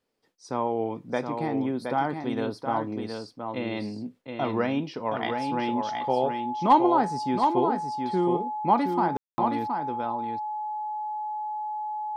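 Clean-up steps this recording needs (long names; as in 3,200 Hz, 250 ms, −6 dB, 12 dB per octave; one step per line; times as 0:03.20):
notch filter 850 Hz, Q 30
ambience match 0:09.17–0:09.38
echo removal 720 ms −5.5 dB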